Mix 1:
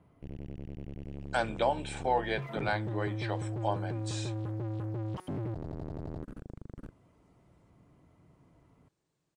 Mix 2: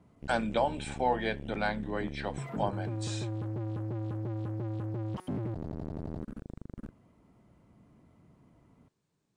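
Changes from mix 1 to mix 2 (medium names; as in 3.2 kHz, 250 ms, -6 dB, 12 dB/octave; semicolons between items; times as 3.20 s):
speech: entry -1.05 s; master: add peaking EQ 220 Hz +8.5 dB 0.33 oct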